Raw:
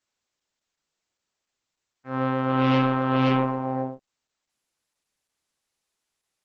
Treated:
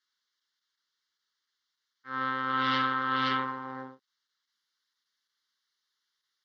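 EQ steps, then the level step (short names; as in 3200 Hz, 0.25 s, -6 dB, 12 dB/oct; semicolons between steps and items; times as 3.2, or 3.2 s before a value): band-pass 2900 Hz, Q 0.69; fixed phaser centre 2500 Hz, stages 6; +6.0 dB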